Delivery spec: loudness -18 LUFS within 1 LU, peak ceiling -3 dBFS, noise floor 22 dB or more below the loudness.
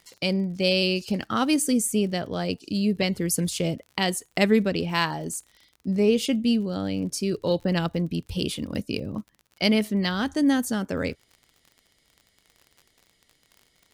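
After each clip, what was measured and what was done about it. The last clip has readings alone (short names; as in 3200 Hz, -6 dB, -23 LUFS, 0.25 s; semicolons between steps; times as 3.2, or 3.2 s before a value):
ticks 44/s; loudness -25.0 LUFS; peak -6.0 dBFS; loudness target -18.0 LUFS
-> de-click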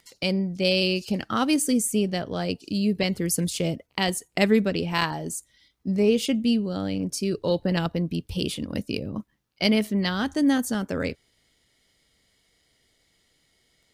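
ticks 0.22/s; loudness -25.0 LUFS; peak -6.0 dBFS; loudness target -18.0 LUFS
-> gain +7 dB; limiter -3 dBFS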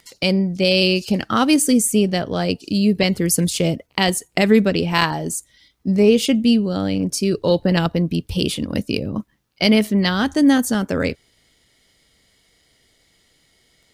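loudness -18.5 LUFS; peak -3.0 dBFS; noise floor -61 dBFS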